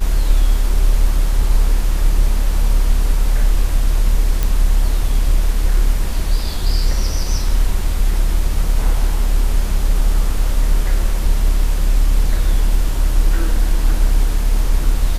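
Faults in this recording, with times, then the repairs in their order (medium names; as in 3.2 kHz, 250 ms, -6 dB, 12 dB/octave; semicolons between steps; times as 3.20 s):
4.43 s: pop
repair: de-click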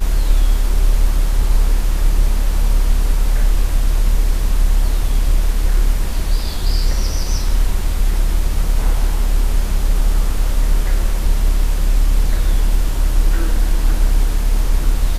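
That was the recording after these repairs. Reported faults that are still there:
nothing left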